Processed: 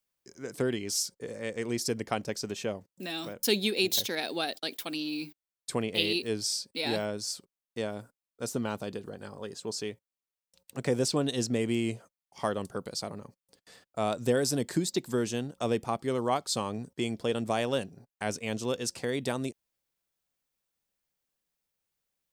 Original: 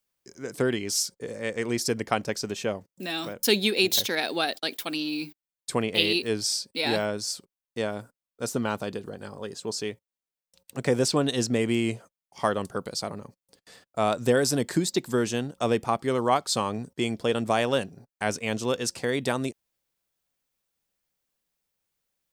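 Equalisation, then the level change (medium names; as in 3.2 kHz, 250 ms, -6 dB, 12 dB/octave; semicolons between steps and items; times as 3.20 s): dynamic bell 1.4 kHz, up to -4 dB, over -37 dBFS, Q 0.71; -3.5 dB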